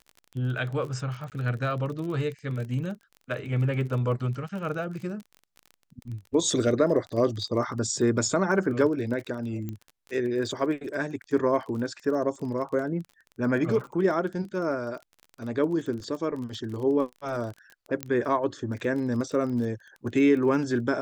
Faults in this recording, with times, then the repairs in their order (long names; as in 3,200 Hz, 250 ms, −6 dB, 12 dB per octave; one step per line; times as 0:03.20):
surface crackle 30 per second −35 dBFS
0:01.30–0:01.32: drop-out 18 ms
0:09.69: click −22 dBFS
0:18.03: click −13 dBFS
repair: click removal
repair the gap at 0:01.30, 18 ms